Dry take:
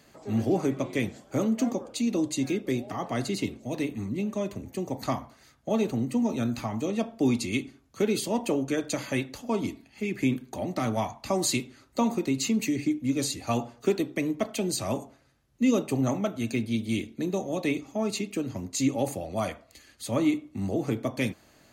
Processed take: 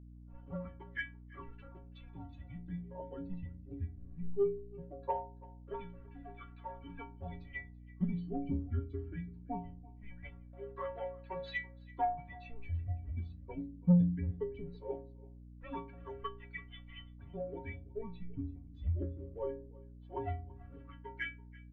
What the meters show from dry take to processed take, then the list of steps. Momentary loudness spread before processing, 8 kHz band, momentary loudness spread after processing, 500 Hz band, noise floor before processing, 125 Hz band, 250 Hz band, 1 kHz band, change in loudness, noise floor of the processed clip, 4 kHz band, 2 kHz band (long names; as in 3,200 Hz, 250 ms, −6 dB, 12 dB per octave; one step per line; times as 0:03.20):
7 LU, below −40 dB, 16 LU, −12.0 dB, −60 dBFS, −5.0 dB, −13.5 dB, −7.5 dB, −11.0 dB, −53 dBFS, −20.5 dB, −9.0 dB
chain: spectral dynamics exaggerated over time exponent 2
automatic gain control gain up to 5.5 dB
leveller curve on the samples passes 1
auto-filter band-pass sine 0.2 Hz 360–1,800 Hz
single-sideband voice off tune −210 Hz 160–3,500 Hz
stiff-string resonator 83 Hz, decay 0.78 s, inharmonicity 0.03
soft clipping −28.5 dBFS, distortion −14 dB
on a send: single-tap delay 334 ms −22.5 dB
on the sum: mains hum 60 Hz, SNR 13 dB
level +9.5 dB